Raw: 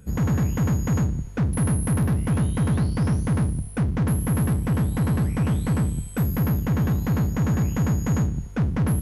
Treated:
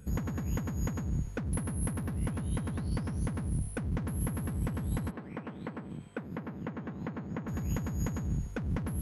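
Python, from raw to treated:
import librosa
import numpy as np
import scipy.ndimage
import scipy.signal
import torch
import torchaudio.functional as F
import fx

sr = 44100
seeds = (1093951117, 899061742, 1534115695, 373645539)

y = fx.over_compress(x, sr, threshold_db=-26.0, ratio=-1.0)
y = fx.bandpass_edges(y, sr, low_hz=fx.line((5.1, 280.0), (7.47, 170.0)), high_hz=2500.0, at=(5.1, 7.47), fade=0.02)
y = y * 10.0 ** (-7.0 / 20.0)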